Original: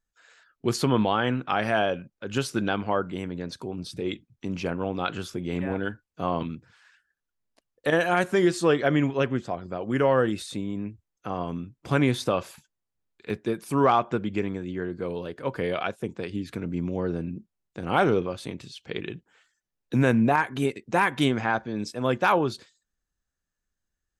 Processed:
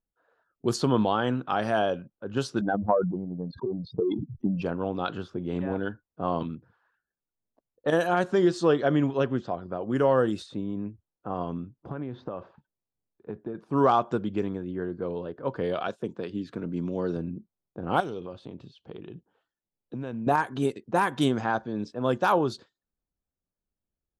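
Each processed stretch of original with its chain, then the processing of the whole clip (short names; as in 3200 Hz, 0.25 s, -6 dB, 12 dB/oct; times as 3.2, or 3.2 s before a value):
2.61–4.62 spectral contrast raised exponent 3 + transient shaper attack +9 dB, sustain -11 dB + sustainer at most 45 dB/s
8.07–9.76 LPF 5100 Hz + mismatched tape noise reduction encoder only
11.89–13.55 compressor 10:1, threshold -28 dBFS + air absorption 170 m
15.88–17.17 HPF 120 Hz + high shelf 3900 Hz +12 dB + notch 780 Hz, Q 13
18–20.27 resonant high shelf 2300 Hz +7 dB, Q 1.5 + compressor 3:1, threshold -34 dBFS
whole clip: low shelf 71 Hz -7.5 dB; low-pass opened by the level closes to 850 Hz, open at -20 dBFS; bell 2200 Hz -11.5 dB 0.72 oct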